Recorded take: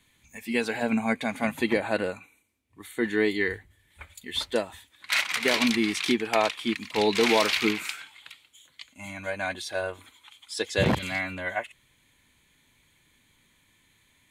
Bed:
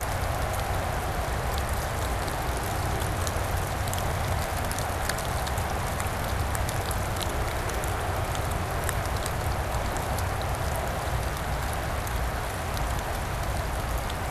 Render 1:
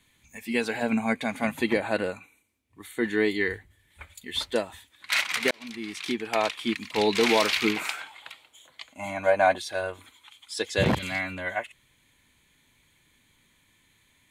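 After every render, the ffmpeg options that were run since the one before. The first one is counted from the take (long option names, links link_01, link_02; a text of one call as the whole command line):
ffmpeg -i in.wav -filter_complex "[0:a]asettb=1/sr,asplit=3[link_01][link_02][link_03];[link_01]atrim=end=7.764[link_04];[link_02]atrim=start=7.76:end=9.58,asetpts=PTS-STARTPTS,afade=type=in:duration=0.004:curve=qsin,afade=type=out:start_time=1.816:duration=0.004:curve=qsin,equalizer=frequency=700:width=0.81:gain=14[link_05];[link_03]atrim=start=9.576[link_06];[link_04][link_05]acrossfade=duration=0.004:curve1=hsin:curve2=qsin[link_07];[link_07][link_06]acrossfade=duration=0.004:curve1=qsin:curve2=hsin,asplit=2[link_08][link_09];[link_08]atrim=end=5.51,asetpts=PTS-STARTPTS,afade=type=out:start_time=5.506:duration=0.004:curve=hsin[link_10];[link_09]atrim=start=5.51,asetpts=PTS-STARTPTS,afade=type=in:duration=1.1[link_11];[link_10][link_11]concat=n=2:v=0:a=1" out.wav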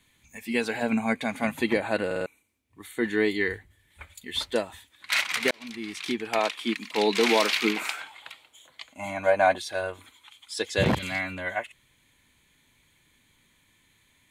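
ffmpeg -i in.wav -filter_complex "[0:a]asettb=1/sr,asplit=3[link_01][link_02][link_03];[link_01]atrim=end=6.394[link_04];[link_02]atrim=start=6.39:end=7.99,asetpts=PTS-STARTPTS,afade=type=in:duration=0.004:curve=qsin,afade=type=out:start_time=1.596:duration=0.004:curve=qsin,highpass=frequency=180:width=0.5412,highpass=frequency=180:width=1.3066[link_05];[link_03]atrim=start=7.986[link_06];[link_04][link_05]acrossfade=duration=0.004:curve1=hsin:curve2=qsin[link_07];[link_07][link_06]acrossfade=duration=0.004:curve1=qsin:curve2=hsin,asplit=5[link_08][link_09][link_10][link_11][link_12];[link_08]atrim=end=2.112[link_13];[link_09]atrim=start=2.058:end=2.112[link_14];[link_10]atrim=start=2.058:end=2.112[link_15];[link_11]atrim=start=2.058:end=2.112[link_16];[link_12]atrim=start=2.258[link_17];[link_13][link_14]acrossfade=duration=0.004:curve1=hsin:curve2=hsin[link_18];[link_18][link_15]acrossfade=duration=0.004:curve1=hsin:curve2=hsin[link_19];[link_19][link_16]acrossfade=duration=0.004:curve1=hsin:curve2=hsin[link_20];[link_20][link_17]acrossfade=duration=0.004:curve1=hsin:curve2=hsin" out.wav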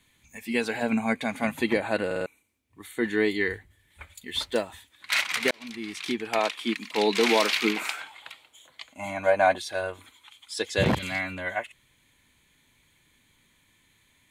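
ffmpeg -i in.wav -filter_complex "[0:a]asettb=1/sr,asplit=3[link_01][link_02][link_03];[link_01]atrim=end=4.274[link_04];[link_02]atrim=start=4.27:end=5.15,asetpts=PTS-STARTPTS,afade=type=in:duration=0.004:curve=qsin,afade=type=out:start_time=0.876:duration=0.004:curve=qsin,acrusher=bits=9:mode=log:mix=0:aa=0.000001[link_05];[link_03]atrim=start=5.146[link_06];[link_04][link_05]acrossfade=duration=0.004:curve1=hsin:curve2=qsin[link_07];[link_07][link_06]acrossfade=duration=0.004:curve1=qsin:curve2=hsin" out.wav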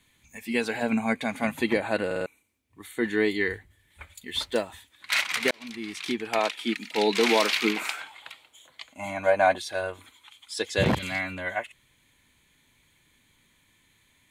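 ffmpeg -i in.wav -filter_complex "[0:a]asettb=1/sr,asplit=3[link_01][link_02][link_03];[link_01]atrim=end=6.524[link_04];[link_02]atrim=start=6.52:end=7.12,asetpts=PTS-STARTPTS,afade=type=in:duration=0.004:curve=qsin,afade=type=out:start_time=0.596:duration=0.004:curve=qsin,asuperstop=centerf=1100:order=20:qfactor=5.5[link_05];[link_03]atrim=start=7.116[link_06];[link_04][link_05]acrossfade=duration=0.004:curve1=hsin:curve2=qsin[link_07];[link_07][link_06]acrossfade=duration=0.004:curve1=qsin:curve2=hsin" out.wav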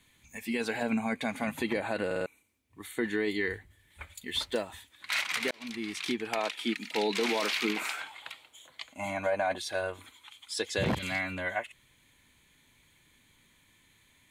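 ffmpeg -i in.wav -af "alimiter=limit=-16dB:level=0:latency=1:release=14,acompressor=threshold=-32dB:ratio=1.5" out.wav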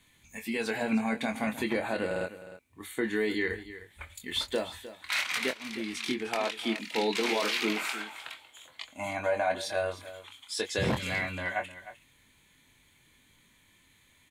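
ffmpeg -i in.wav -filter_complex "[0:a]asplit=2[link_01][link_02];[link_02]adelay=23,volume=-7dB[link_03];[link_01][link_03]amix=inputs=2:normalize=0,aecho=1:1:307:0.188" out.wav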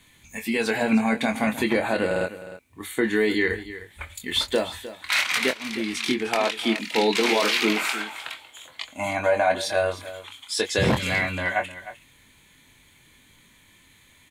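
ffmpeg -i in.wav -af "volume=7.5dB" out.wav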